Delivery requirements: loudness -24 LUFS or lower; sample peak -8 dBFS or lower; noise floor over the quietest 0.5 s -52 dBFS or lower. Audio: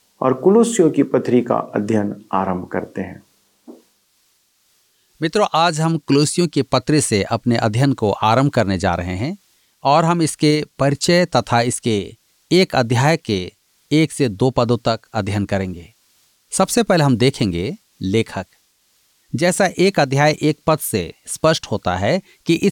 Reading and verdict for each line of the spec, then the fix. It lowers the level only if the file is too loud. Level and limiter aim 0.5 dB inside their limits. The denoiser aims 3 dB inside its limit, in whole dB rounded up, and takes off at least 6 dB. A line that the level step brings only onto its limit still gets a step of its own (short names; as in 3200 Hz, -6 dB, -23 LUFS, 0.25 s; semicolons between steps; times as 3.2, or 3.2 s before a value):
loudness -17.5 LUFS: fail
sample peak -3.5 dBFS: fail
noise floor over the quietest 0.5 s -61 dBFS: OK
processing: gain -7 dB